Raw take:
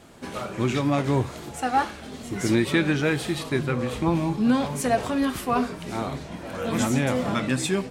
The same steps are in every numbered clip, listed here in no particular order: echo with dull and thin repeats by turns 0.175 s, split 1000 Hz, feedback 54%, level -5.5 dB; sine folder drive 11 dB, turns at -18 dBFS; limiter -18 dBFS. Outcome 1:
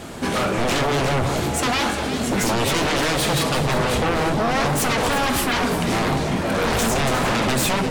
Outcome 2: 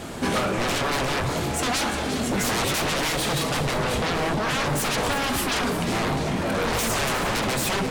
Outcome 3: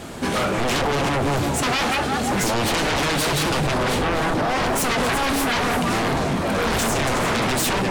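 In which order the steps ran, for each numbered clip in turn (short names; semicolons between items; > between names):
limiter > sine folder > echo with dull and thin repeats by turns; sine folder > echo with dull and thin repeats by turns > limiter; echo with dull and thin repeats by turns > limiter > sine folder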